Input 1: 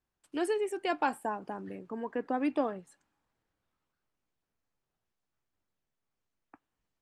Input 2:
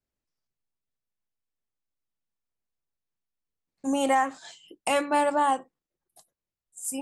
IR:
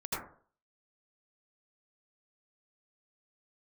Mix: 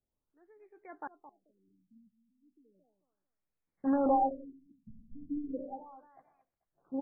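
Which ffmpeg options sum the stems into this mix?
-filter_complex "[0:a]aeval=exprs='val(0)*pow(10,-35*if(lt(mod(-0.93*n/s,1),2*abs(-0.93)/1000),1-mod(-0.93*n/s,1)/(2*abs(-0.93)/1000),(mod(-0.93*n/s,1)-2*abs(-0.93)/1000)/(1-2*abs(-0.93)/1000))/20)':c=same,volume=0.237,asplit=2[s0][s1];[s1]volume=0.251[s2];[1:a]asoftclip=type=hard:threshold=0.0708,volume=0.794,asplit=3[s3][s4][s5];[s4]volume=0.282[s6];[s5]volume=0.224[s7];[2:a]atrim=start_sample=2205[s8];[s6][s8]afir=irnorm=-1:irlink=0[s9];[s2][s7]amix=inputs=2:normalize=0,aecho=0:1:219|438|657|876:1|0.27|0.0729|0.0197[s10];[s0][s3][s9][s10]amix=inputs=4:normalize=0,afftfilt=real='re*lt(b*sr/1024,240*pow(2600/240,0.5+0.5*sin(2*PI*0.35*pts/sr)))':imag='im*lt(b*sr/1024,240*pow(2600/240,0.5+0.5*sin(2*PI*0.35*pts/sr)))':win_size=1024:overlap=0.75"

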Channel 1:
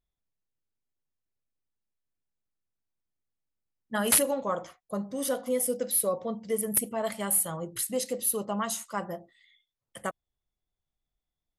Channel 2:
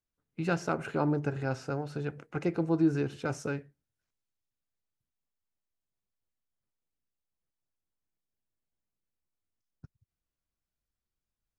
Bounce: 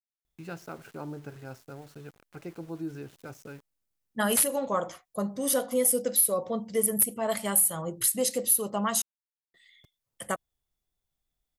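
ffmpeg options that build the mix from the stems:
-filter_complex "[0:a]alimiter=limit=0.126:level=0:latency=1:release=256,adelay=250,volume=1.26,asplit=3[s0][s1][s2];[s0]atrim=end=9.02,asetpts=PTS-STARTPTS,afade=t=out:st=9.016:d=0.004:c=hsin[s3];[s1]atrim=start=9.02:end=9.54,asetpts=PTS-STARTPTS,volume=0[s4];[s2]atrim=start=9.54,asetpts=PTS-STARTPTS,afade=t=in:d=0.004:c=hsin[s5];[s3][s4][s5]concat=n=3:v=0:a=1[s6];[1:a]aeval=exprs='val(0)*gte(abs(val(0)),0.0075)':c=same,volume=0.299[s7];[s6][s7]amix=inputs=2:normalize=0,highshelf=f=6100:g=6.5"

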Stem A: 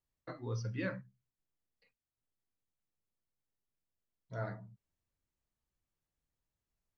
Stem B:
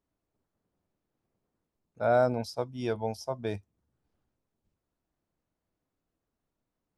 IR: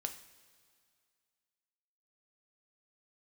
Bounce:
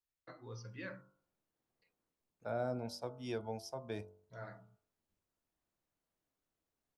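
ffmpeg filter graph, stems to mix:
-filter_complex "[0:a]volume=0.562[s0];[1:a]acrossover=split=380[s1][s2];[s2]acompressor=threshold=0.0112:ratio=2.5[s3];[s1][s3]amix=inputs=2:normalize=0,adelay=450,volume=0.708[s4];[s0][s4]amix=inputs=2:normalize=0,lowshelf=f=350:g=-7,bandreject=f=47.96:t=h:w=4,bandreject=f=95.92:t=h:w=4,bandreject=f=143.88:t=h:w=4,bandreject=f=191.84:t=h:w=4,bandreject=f=239.8:t=h:w=4,bandreject=f=287.76:t=h:w=4,bandreject=f=335.72:t=h:w=4,bandreject=f=383.68:t=h:w=4,bandreject=f=431.64:t=h:w=4,bandreject=f=479.6:t=h:w=4,bandreject=f=527.56:t=h:w=4,bandreject=f=575.52:t=h:w=4,bandreject=f=623.48:t=h:w=4,bandreject=f=671.44:t=h:w=4,bandreject=f=719.4:t=h:w=4,bandreject=f=767.36:t=h:w=4,bandreject=f=815.32:t=h:w=4,bandreject=f=863.28:t=h:w=4,bandreject=f=911.24:t=h:w=4,bandreject=f=959.2:t=h:w=4,bandreject=f=1007.16:t=h:w=4,bandreject=f=1055.12:t=h:w=4,bandreject=f=1103.08:t=h:w=4,bandreject=f=1151.04:t=h:w=4,bandreject=f=1199:t=h:w=4,bandreject=f=1246.96:t=h:w=4,bandreject=f=1294.92:t=h:w=4,bandreject=f=1342.88:t=h:w=4,bandreject=f=1390.84:t=h:w=4,bandreject=f=1438.8:t=h:w=4,bandreject=f=1486.76:t=h:w=4"

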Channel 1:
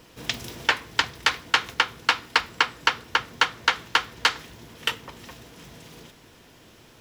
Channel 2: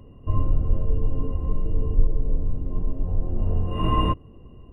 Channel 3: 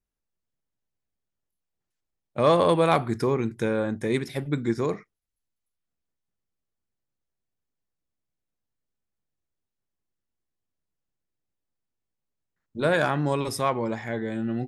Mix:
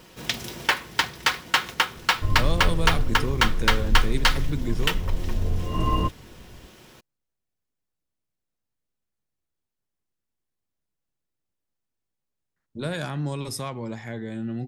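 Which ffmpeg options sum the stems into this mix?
-filter_complex "[0:a]aecho=1:1:5.4:0.33,acrusher=bits=3:mode=log:mix=0:aa=0.000001,asoftclip=type=tanh:threshold=0.299,volume=1.19[s0];[1:a]adelay=1950,volume=0.794[s1];[2:a]acrossover=split=220|3000[s2][s3][s4];[s3]acompressor=threshold=0.00891:ratio=2[s5];[s2][s5][s4]amix=inputs=3:normalize=0,volume=1.06[s6];[s0][s1][s6]amix=inputs=3:normalize=0"

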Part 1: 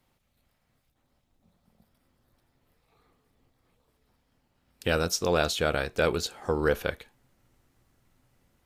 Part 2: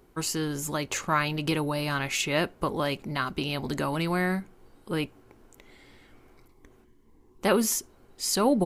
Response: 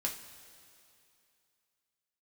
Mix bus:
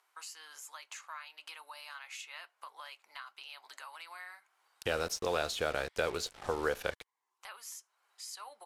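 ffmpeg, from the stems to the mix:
-filter_complex "[0:a]acrossover=split=400|1100[s0][s1][s2];[s0]acompressor=threshold=0.00316:ratio=4[s3];[s1]acompressor=threshold=0.0316:ratio=4[s4];[s2]acompressor=threshold=0.02:ratio=4[s5];[s3][s4][s5]amix=inputs=3:normalize=0,acrusher=bits=6:mix=0:aa=0.5,volume=0.841,asplit=2[s6][s7];[1:a]highpass=f=910:w=0.5412,highpass=f=910:w=1.3066,acompressor=threshold=0.00562:ratio=2.5,flanger=delay=3:depth=3.1:regen=-71:speed=1.1:shape=sinusoidal,volume=1[s8];[s7]apad=whole_len=381528[s9];[s8][s9]sidechaincompress=threshold=0.0112:ratio=6:attack=12:release=855[s10];[s6][s10]amix=inputs=2:normalize=0,lowpass=12000,lowshelf=f=98:g=9"

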